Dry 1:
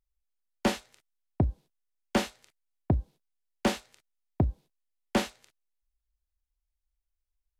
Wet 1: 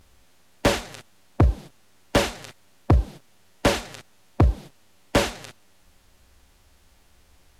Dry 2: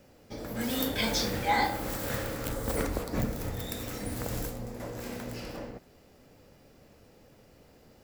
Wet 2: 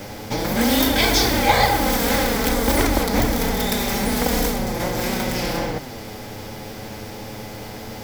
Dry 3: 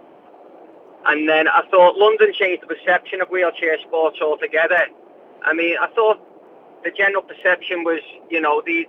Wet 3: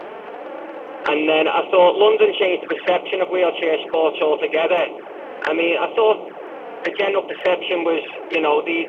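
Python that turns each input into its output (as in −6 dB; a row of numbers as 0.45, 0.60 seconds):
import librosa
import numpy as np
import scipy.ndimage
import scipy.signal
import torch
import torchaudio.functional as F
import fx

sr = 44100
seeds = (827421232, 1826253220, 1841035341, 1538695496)

y = fx.bin_compress(x, sr, power=0.6)
y = fx.env_flanger(y, sr, rest_ms=11.4, full_db=-14.0)
y = y * 10.0 ** (-3 / 20.0) / np.max(np.abs(y))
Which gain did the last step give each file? +9.5, +12.0, −1.0 decibels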